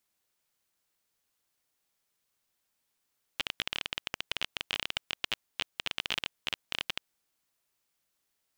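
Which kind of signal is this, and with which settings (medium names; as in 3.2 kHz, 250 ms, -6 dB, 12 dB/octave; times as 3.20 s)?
random clicks 20 per s -13 dBFS 3.70 s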